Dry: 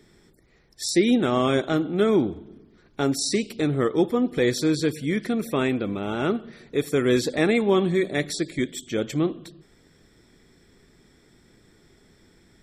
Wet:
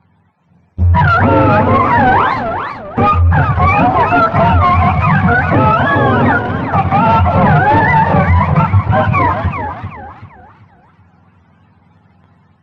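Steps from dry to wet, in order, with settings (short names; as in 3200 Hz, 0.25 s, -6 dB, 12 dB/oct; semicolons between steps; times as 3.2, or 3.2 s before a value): spectrum mirrored in octaves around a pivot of 580 Hz; sample leveller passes 3; tape spacing loss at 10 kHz 24 dB; AGC gain up to 5 dB; high shelf 5100 Hz -8.5 dB; maximiser +16 dB; warbling echo 0.392 s, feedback 33%, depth 205 cents, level -8.5 dB; gain -4 dB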